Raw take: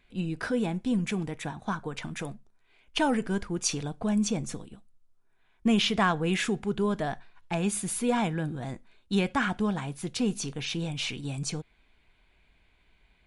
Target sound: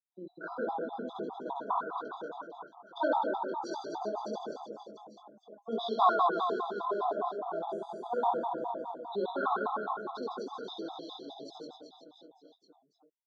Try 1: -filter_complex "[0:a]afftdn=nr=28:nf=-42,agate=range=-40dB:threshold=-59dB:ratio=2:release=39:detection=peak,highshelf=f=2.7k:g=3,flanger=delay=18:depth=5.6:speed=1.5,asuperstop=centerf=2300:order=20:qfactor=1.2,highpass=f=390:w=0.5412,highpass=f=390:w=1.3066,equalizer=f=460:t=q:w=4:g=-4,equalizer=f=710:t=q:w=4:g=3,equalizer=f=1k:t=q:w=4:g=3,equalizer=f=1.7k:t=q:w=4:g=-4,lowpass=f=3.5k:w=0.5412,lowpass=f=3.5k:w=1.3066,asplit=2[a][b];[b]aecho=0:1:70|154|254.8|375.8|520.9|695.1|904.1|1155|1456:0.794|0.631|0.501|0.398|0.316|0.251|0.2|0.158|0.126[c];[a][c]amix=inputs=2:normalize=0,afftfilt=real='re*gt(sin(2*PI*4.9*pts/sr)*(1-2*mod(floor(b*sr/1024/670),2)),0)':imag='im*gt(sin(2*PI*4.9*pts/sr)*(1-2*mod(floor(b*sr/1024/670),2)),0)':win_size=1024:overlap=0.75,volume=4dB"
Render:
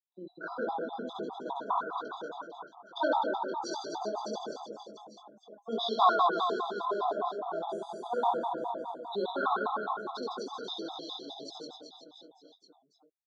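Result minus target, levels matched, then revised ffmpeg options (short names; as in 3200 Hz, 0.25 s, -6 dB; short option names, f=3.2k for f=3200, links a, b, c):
4000 Hz band +5.5 dB
-filter_complex "[0:a]afftdn=nr=28:nf=-42,agate=range=-40dB:threshold=-59dB:ratio=2:release=39:detection=peak,highshelf=f=2.7k:g=-7,flanger=delay=18:depth=5.6:speed=1.5,asuperstop=centerf=2300:order=20:qfactor=1.2,highpass=f=390:w=0.5412,highpass=f=390:w=1.3066,equalizer=f=460:t=q:w=4:g=-4,equalizer=f=710:t=q:w=4:g=3,equalizer=f=1k:t=q:w=4:g=3,equalizer=f=1.7k:t=q:w=4:g=-4,lowpass=f=3.5k:w=0.5412,lowpass=f=3.5k:w=1.3066,asplit=2[a][b];[b]aecho=0:1:70|154|254.8|375.8|520.9|695.1|904.1|1155|1456:0.794|0.631|0.501|0.398|0.316|0.251|0.2|0.158|0.126[c];[a][c]amix=inputs=2:normalize=0,afftfilt=real='re*gt(sin(2*PI*4.9*pts/sr)*(1-2*mod(floor(b*sr/1024/670),2)),0)':imag='im*gt(sin(2*PI*4.9*pts/sr)*(1-2*mod(floor(b*sr/1024/670),2)),0)':win_size=1024:overlap=0.75,volume=4dB"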